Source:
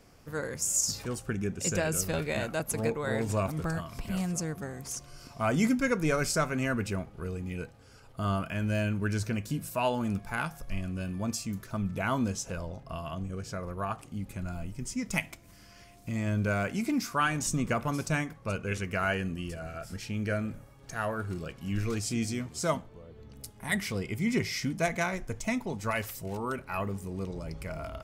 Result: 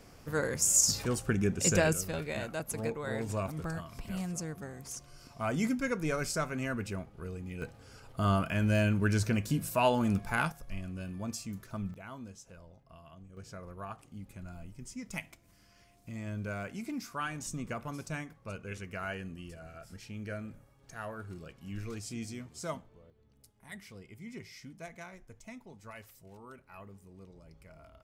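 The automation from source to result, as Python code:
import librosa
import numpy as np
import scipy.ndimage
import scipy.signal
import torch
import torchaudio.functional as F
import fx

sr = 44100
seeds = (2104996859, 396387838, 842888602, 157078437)

y = fx.gain(x, sr, db=fx.steps((0.0, 3.0), (1.93, -5.0), (7.62, 2.0), (10.52, -5.5), (11.94, -16.5), (13.37, -9.0), (23.1, -17.0)))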